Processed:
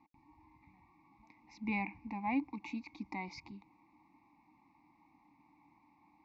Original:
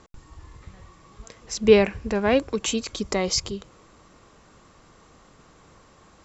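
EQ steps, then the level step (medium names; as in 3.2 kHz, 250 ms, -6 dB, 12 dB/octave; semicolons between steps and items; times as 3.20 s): vowel filter u; low-pass 4.6 kHz 12 dB/octave; static phaser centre 2.1 kHz, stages 8; +3.0 dB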